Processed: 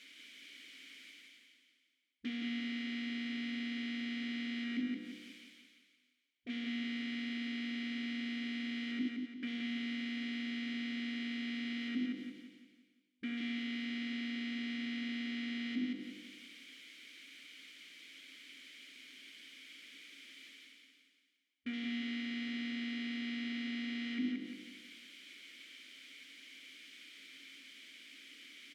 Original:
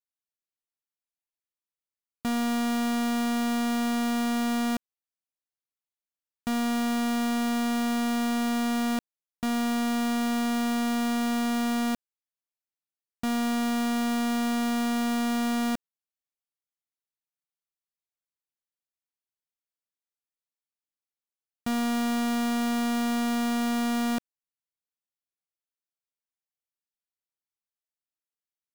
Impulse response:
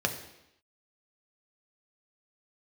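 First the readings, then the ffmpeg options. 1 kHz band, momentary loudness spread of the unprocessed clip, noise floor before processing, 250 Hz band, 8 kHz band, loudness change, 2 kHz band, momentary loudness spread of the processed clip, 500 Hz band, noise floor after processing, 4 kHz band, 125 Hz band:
-29.0 dB, 4 LU, under -85 dBFS, -12.0 dB, under -20 dB, -12.0 dB, -6.5 dB, 14 LU, -23.5 dB, -76 dBFS, -6.0 dB, no reading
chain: -filter_complex "[0:a]bandreject=f=50:t=h:w=6,bandreject=f=100:t=h:w=6,bandreject=f=150:t=h:w=6,bandreject=f=200:t=h:w=6,bandreject=f=250:t=h:w=6,bandreject=f=300:t=h:w=6,bandreject=f=350:t=h:w=6,bandreject=f=400:t=h:w=6,bandreject=f=450:t=h:w=6,bandreject=f=500:t=h:w=6,afwtdn=0.0178,areverse,acompressor=mode=upward:threshold=0.0282:ratio=2.5,areverse,alimiter=level_in=2.51:limit=0.0631:level=0:latency=1:release=320,volume=0.398,aeval=exprs='0.0126*(abs(mod(val(0)/0.0126+3,4)-2)-1)':c=same,asplit=2[s0][s1];[s1]highpass=f=720:p=1,volume=15.8,asoftclip=type=tanh:threshold=0.0133[s2];[s0][s2]amix=inputs=2:normalize=0,lowpass=f=7700:p=1,volume=0.501,asplit=3[s3][s4][s5];[s3]bandpass=f=270:t=q:w=8,volume=1[s6];[s4]bandpass=f=2290:t=q:w=8,volume=0.501[s7];[s5]bandpass=f=3010:t=q:w=8,volume=0.355[s8];[s6][s7][s8]amix=inputs=3:normalize=0,aecho=1:1:174|348|522|696|870|1044:0.631|0.278|0.122|0.0537|0.0236|0.0104,volume=4.73"

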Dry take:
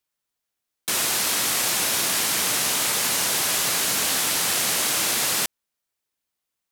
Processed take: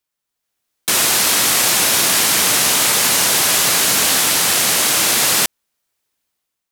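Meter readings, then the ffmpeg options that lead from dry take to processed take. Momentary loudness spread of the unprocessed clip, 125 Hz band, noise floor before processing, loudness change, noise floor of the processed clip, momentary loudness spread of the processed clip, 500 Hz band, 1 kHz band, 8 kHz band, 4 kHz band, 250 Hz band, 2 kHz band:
2 LU, +8.0 dB, -83 dBFS, +8.0 dB, -80 dBFS, 2 LU, +8.0 dB, +8.0 dB, +8.0 dB, +8.0 dB, +8.0 dB, +8.0 dB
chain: -af "dynaudnorm=f=130:g=7:m=2.37,volume=1.19"

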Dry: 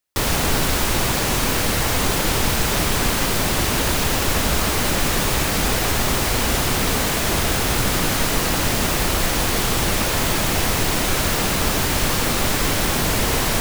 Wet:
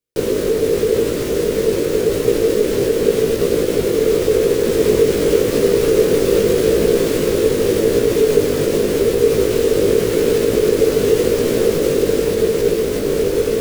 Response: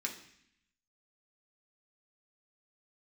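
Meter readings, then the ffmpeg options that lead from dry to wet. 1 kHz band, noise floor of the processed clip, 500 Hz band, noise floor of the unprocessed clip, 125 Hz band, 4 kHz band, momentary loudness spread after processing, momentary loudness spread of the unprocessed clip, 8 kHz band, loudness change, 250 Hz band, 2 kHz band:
-9.5 dB, -20 dBFS, +14.0 dB, -21 dBFS, -2.5 dB, -6.5 dB, 3 LU, 0 LU, -6.5 dB, +3.5 dB, +5.0 dB, -7.0 dB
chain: -af "aeval=exprs='val(0)*sin(2*PI*440*n/s)':c=same,alimiter=limit=0.251:level=0:latency=1:release=51,lowshelf=f=600:t=q:w=3:g=9,flanger=delay=17:depth=3.3:speed=0.87,dynaudnorm=f=150:g=21:m=3.76,volume=0.891"

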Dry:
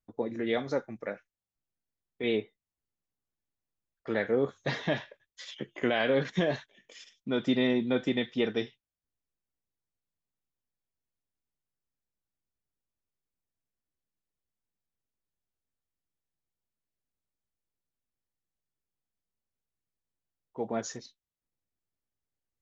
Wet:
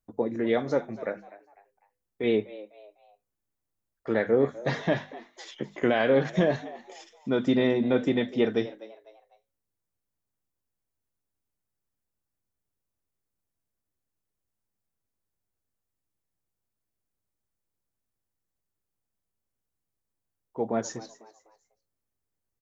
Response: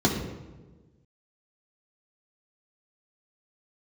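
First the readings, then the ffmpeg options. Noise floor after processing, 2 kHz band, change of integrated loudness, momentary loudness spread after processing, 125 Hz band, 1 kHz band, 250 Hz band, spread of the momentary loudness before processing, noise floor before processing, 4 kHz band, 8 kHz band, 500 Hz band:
-84 dBFS, +1.5 dB, +4.0 dB, 19 LU, +4.5 dB, +4.5 dB, +4.0 dB, 17 LU, under -85 dBFS, -1.5 dB, no reading, +5.0 dB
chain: -filter_complex "[0:a]equalizer=f=3300:w=0.75:g=-7,bandreject=f=50:t=h:w=6,bandreject=f=100:t=h:w=6,bandreject=f=150:t=h:w=6,bandreject=f=200:t=h:w=6,bandreject=f=250:t=h:w=6,asplit=4[s0][s1][s2][s3];[s1]adelay=250,afreqshift=100,volume=0.126[s4];[s2]adelay=500,afreqshift=200,volume=0.0442[s5];[s3]adelay=750,afreqshift=300,volume=0.0155[s6];[s0][s4][s5][s6]amix=inputs=4:normalize=0,volume=1.78"

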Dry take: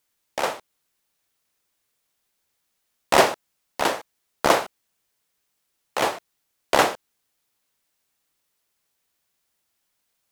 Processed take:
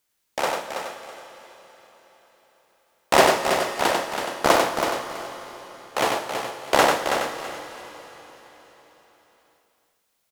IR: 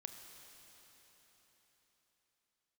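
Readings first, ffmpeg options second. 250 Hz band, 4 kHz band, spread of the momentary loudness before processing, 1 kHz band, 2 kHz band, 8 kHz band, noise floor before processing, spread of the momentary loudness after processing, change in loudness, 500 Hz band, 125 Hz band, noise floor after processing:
+2.5 dB, +2.5 dB, 20 LU, +2.5 dB, +2.5 dB, +2.5 dB, -75 dBFS, 20 LU, 0.0 dB, +2.5 dB, +2.5 dB, -72 dBFS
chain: -filter_complex "[0:a]aecho=1:1:327|654|981:0.447|0.107|0.0257,asplit=2[s0][s1];[1:a]atrim=start_sample=2205,adelay=95[s2];[s1][s2]afir=irnorm=-1:irlink=0,volume=1.12[s3];[s0][s3]amix=inputs=2:normalize=0"

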